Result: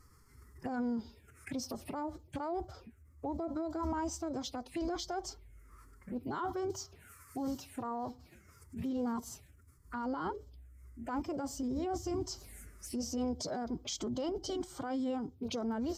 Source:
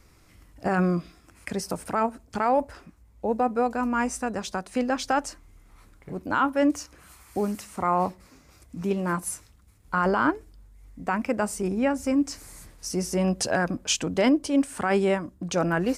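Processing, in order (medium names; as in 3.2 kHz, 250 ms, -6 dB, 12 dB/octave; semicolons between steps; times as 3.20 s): touch-sensitive phaser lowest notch 460 Hz, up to 2 kHz, full sweep at -27 dBFS; peak limiter -25 dBFS, peak gain reduction 12 dB; formant-preserving pitch shift +5 st; trim -3.5 dB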